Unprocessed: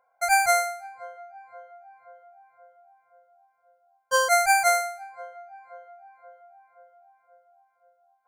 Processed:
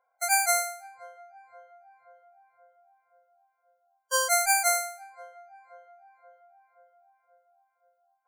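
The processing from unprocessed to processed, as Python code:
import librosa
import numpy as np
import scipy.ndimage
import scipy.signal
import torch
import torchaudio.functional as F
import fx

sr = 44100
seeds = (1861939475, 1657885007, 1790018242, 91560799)

y = fx.high_shelf(x, sr, hz=4300.0, db=12.0)
y = fx.spec_topn(y, sr, count=64)
y = y * 10.0 ** (-6.5 / 20.0)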